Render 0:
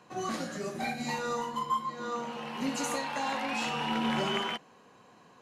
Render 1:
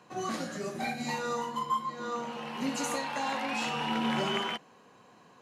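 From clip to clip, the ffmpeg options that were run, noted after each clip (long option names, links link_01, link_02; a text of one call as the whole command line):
ffmpeg -i in.wav -af "highpass=57" out.wav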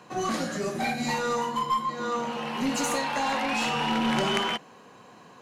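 ffmpeg -i in.wav -af "aeval=exprs='0.126*(cos(1*acos(clip(val(0)/0.126,-1,1)))-cos(1*PI/2))+0.00562*(cos(2*acos(clip(val(0)/0.126,-1,1)))-cos(2*PI/2))+0.0398*(cos(3*acos(clip(val(0)/0.126,-1,1)))-cos(3*PI/2))+0.02*(cos(5*acos(clip(val(0)/0.126,-1,1)))-cos(5*PI/2))':channel_layout=same,volume=8.5dB" out.wav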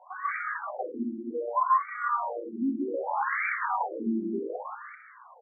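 ffmpeg -i in.wav -filter_complex "[0:a]asplit=5[link_01][link_02][link_03][link_04][link_05];[link_02]adelay=191,afreqshift=110,volume=-8dB[link_06];[link_03]adelay=382,afreqshift=220,volume=-17.4dB[link_07];[link_04]adelay=573,afreqshift=330,volume=-26.7dB[link_08];[link_05]adelay=764,afreqshift=440,volume=-36.1dB[link_09];[link_01][link_06][link_07][link_08][link_09]amix=inputs=5:normalize=0,crystalizer=i=6:c=0,afftfilt=real='re*between(b*sr/1024,250*pow(1700/250,0.5+0.5*sin(2*PI*0.65*pts/sr))/1.41,250*pow(1700/250,0.5+0.5*sin(2*PI*0.65*pts/sr))*1.41)':imag='im*between(b*sr/1024,250*pow(1700/250,0.5+0.5*sin(2*PI*0.65*pts/sr))/1.41,250*pow(1700/250,0.5+0.5*sin(2*PI*0.65*pts/sr))*1.41)':win_size=1024:overlap=0.75" out.wav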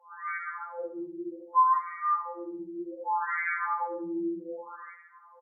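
ffmpeg -i in.wav -filter_complex "[0:a]asuperstop=centerf=720:order=4:qfactor=4.6,asplit=2[link_01][link_02];[link_02]aecho=0:1:70|140|210|280|350:0.237|0.109|0.0502|0.0231|0.0106[link_03];[link_01][link_03]amix=inputs=2:normalize=0,afftfilt=real='re*2.83*eq(mod(b,8),0)':imag='im*2.83*eq(mod(b,8),0)':win_size=2048:overlap=0.75" out.wav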